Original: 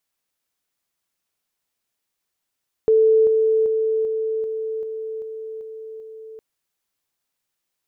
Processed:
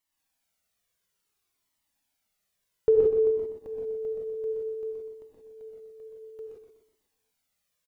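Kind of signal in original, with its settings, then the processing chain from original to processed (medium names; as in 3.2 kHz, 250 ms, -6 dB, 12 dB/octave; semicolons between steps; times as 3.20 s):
level ladder 441 Hz -11.5 dBFS, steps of -3 dB, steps 9, 0.39 s 0.00 s
feedback delay 124 ms, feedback 49%, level -7 dB; gated-style reverb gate 200 ms rising, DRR -1.5 dB; Shepard-style flanger falling 0.58 Hz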